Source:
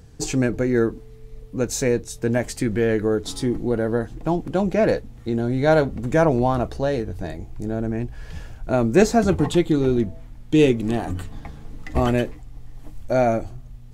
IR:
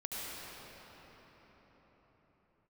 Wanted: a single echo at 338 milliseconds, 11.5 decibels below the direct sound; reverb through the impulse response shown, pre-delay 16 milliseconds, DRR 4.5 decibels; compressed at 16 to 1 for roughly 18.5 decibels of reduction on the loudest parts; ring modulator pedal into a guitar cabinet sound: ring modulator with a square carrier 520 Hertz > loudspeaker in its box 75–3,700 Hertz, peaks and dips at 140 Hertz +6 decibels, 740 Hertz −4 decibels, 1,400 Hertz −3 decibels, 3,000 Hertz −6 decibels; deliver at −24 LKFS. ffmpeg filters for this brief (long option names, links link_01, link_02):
-filter_complex "[0:a]acompressor=threshold=-29dB:ratio=16,aecho=1:1:338:0.266,asplit=2[link_01][link_02];[1:a]atrim=start_sample=2205,adelay=16[link_03];[link_02][link_03]afir=irnorm=-1:irlink=0,volume=-7.5dB[link_04];[link_01][link_04]amix=inputs=2:normalize=0,aeval=exprs='val(0)*sgn(sin(2*PI*520*n/s))':channel_layout=same,highpass=75,equalizer=frequency=140:width_type=q:width=4:gain=6,equalizer=frequency=740:width_type=q:width=4:gain=-4,equalizer=frequency=1400:width_type=q:width=4:gain=-3,equalizer=frequency=3000:width_type=q:width=4:gain=-6,lowpass=frequency=3700:width=0.5412,lowpass=frequency=3700:width=1.3066,volume=9.5dB"